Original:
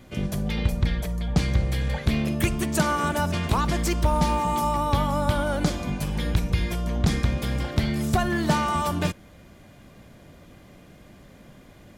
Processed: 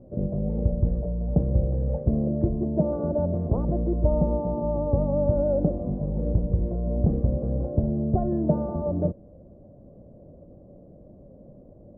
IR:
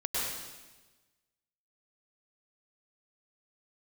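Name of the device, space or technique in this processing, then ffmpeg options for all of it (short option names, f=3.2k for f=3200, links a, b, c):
under water: -filter_complex "[0:a]asettb=1/sr,asplit=3[a][b][c];[a]atrim=end=2.494[d];[b]atrim=start=2.49:end=2.93,asetpts=PTS-STARTPTS,afade=t=in:d=0.004:c=qsin,afade=t=out:st=0.436:d=0.004:c=qsin,equalizer=f=1.4k:t=o:w=0.3:g=-13.5[e];[c]atrim=start=2.926[f];[d][e]acrossfade=d=0.004:c1=hsin:c2=qsin[g];[g][f]acrossfade=d=0.004:c1=qsin:c2=hsin,asettb=1/sr,asplit=3[h][i][j];[h]atrim=end=7.574[k];[i]atrim=start=7.57:end=8.07,asetpts=PTS-STARTPTS,afade=t=in:d=0.004:c=qsin,afade=t=out:st=0.496:d=0.004:c=qsin,lowpass=2k[l];[j]atrim=start=8.066[m];[k][l]acrossfade=d=0.004:c1=hsin:c2=qsin[n];[n][m]acrossfade=d=0.004:c1=qsin:c2=hsin,lowpass=f=600:w=0.5412,lowpass=f=600:w=1.3066,equalizer=f=560:t=o:w=0.46:g=8.5"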